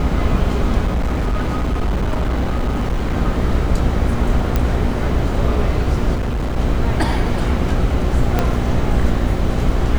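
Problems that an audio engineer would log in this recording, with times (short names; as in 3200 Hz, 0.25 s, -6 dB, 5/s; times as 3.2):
buzz 60 Hz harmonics 13 -21 dBFS
0.87–3.14 clipped -14.5 dBFS
4.56 pop -5 dBFS
6.15–6.57 clipped -17 dBFS
8.39 pop -3 dBFS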